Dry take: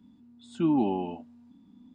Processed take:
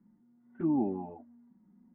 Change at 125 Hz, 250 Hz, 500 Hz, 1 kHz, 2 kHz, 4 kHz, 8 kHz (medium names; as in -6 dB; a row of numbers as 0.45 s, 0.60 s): -5.0 dB, -4.5 dB, -5.0 dB, -8.0 dB, under -10 dB, under -35 dB, no reading